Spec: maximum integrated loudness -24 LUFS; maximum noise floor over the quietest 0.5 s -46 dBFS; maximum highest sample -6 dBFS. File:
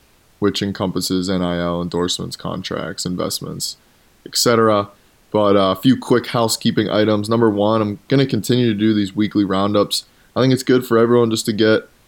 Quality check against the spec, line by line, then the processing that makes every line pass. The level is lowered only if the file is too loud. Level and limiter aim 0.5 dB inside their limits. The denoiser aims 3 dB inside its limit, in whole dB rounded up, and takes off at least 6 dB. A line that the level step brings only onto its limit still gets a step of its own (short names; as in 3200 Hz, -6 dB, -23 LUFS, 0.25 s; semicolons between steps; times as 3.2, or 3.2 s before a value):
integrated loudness -17.5 LUFS: fail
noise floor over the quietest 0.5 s -53 dBFS: OK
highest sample -3.0 dBFS: fail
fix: gain -7 dB